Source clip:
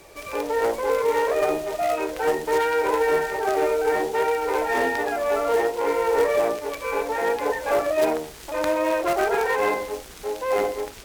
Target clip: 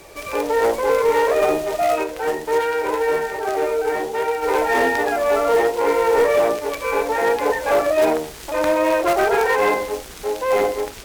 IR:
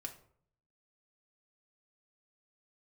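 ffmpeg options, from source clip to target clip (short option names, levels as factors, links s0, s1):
-filter_complex "[0:a]asplit=3[s0][s1][s2];[s0]afade=t=out:st=2.02:d=0.02[s3];[s1]flanger=delay=8.2:depth=1.5:regen=81:speed=1.9:shape=triangular,afade=t=in:st=2.02:d=0.02,afade=t=out:st=4.42:d=0.02[s4];[s2]afade=t=in:st=4.42:d=0.02[s5];[s3][s4][s5]amix=inputs=3:normalize=0,asoftclip=type=hard:threshold=0.158,volume=1.78"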